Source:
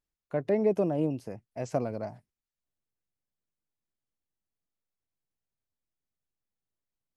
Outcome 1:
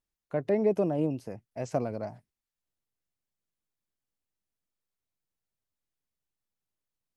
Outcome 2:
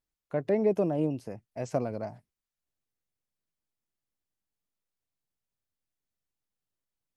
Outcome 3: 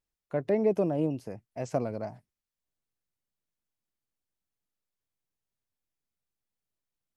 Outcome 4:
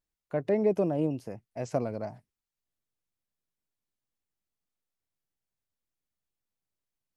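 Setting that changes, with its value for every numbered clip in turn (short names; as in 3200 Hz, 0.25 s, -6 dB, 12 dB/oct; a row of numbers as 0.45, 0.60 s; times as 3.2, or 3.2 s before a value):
vibrato, rate: 8.7, 5.5, 2, 0.98 Hz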